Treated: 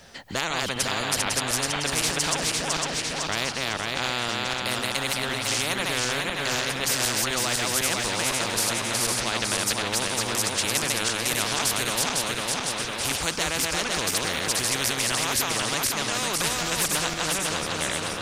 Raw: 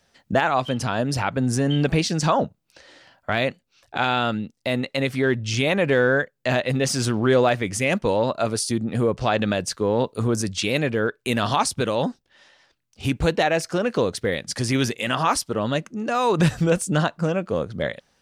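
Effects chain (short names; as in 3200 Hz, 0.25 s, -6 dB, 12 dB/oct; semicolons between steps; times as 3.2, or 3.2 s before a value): regenerating reverse delay 0.252 s, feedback 60%, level -3 dB; thinning echo 1.128 s, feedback 80%, level -23.5 dB; spectral compressor 4:1; gain -3 dB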